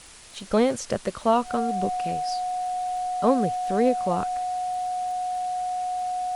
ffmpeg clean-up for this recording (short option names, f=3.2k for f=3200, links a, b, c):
-af "adeclick=t=4,bandreject=f=730:w=30,afwtdn=0.0056"